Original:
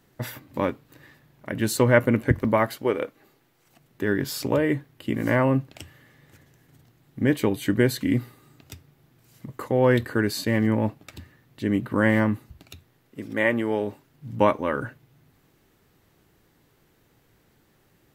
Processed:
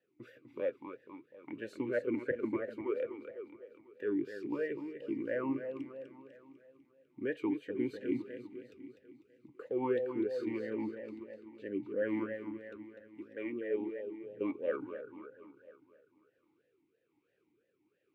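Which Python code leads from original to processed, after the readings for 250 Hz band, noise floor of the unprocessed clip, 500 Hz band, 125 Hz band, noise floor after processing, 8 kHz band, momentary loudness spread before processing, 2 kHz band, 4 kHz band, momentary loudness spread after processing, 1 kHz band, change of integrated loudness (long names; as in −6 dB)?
−12.5 dB, −64 dBFS, −11.0 dB, −26.5 dB, −78 dBFS, below −30 dB, 14 LU, −17.0 dB, below −20 dB, 17 LU, −19.0 dB, −13.5 dB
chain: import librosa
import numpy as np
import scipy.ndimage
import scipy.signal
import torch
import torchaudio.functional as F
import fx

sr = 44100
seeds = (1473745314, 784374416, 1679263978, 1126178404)

p1 = fx.rotary(x, sr, hz=1.2)
p2 = p1 + fx.echo_feedback(p1, sr, ms=249, feedback_pct=55, wet_db=-8, dry=0)
p3 = fx.vowel_sweep(p2, sr, vowels='e-u', hz=3.0)
y = F.gain(torch.from_numpy(p3), -1.5).numpy()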